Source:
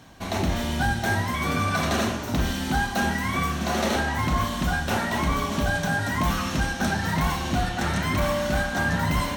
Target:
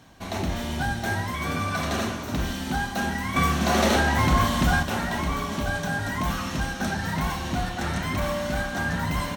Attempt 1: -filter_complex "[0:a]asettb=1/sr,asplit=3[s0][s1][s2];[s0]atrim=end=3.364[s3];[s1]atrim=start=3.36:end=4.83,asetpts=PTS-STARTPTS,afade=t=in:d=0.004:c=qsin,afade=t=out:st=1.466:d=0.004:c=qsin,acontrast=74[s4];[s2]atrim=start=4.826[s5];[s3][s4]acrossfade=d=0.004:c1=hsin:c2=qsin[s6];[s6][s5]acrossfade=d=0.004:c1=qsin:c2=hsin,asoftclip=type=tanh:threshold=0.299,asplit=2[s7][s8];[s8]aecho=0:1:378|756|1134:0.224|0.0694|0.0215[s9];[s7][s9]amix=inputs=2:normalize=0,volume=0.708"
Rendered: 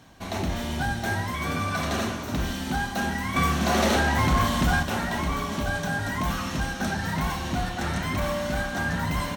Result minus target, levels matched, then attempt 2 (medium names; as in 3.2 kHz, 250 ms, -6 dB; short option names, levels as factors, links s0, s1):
saturation: distortion +18 dB
-filter_complex "[0:a]asettb=1/sr,asplit=3[s0][s1][s2];[s0]atrim=end=3.364[s3];[s1]atrim=start=3.36:end=4.83,asetpts=PTS-STARTPTS,afade=t=in:d=0.004:c=qsin,afade=t=out:st=1.466:d=0.004:c=qsin,acontrast=74[s4];[s2]atrim=start=4.826[s5];[s3][s4]acrossfade=d=0.004:c1=hsin:c2=qsin[s6];[s6][s5]acrossfade=d=0.004:c1=qsin:c2=hsin,asoftclip=type=tanh:threshold=0.944,asplit=2[s7][s8];[s8]aecho=0:1:378|756|1134:0.224|0.0694|0.0215[s9];[s7][s9]amix=inputs=2:normalize=0,volume=0.708"